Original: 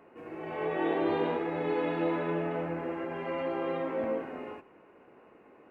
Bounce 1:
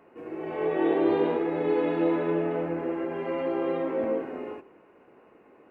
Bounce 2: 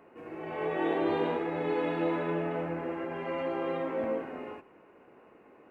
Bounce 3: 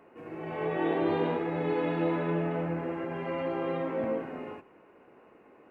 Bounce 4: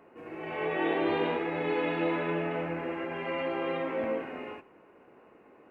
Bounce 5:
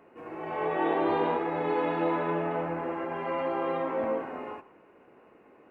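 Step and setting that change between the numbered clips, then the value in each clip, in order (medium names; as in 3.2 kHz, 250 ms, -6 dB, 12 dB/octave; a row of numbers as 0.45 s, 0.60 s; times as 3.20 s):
dynamic bell, frequency: 370 Hz, 8.4 kHz, 140 Hz, 2.5 kHz, 970 Hz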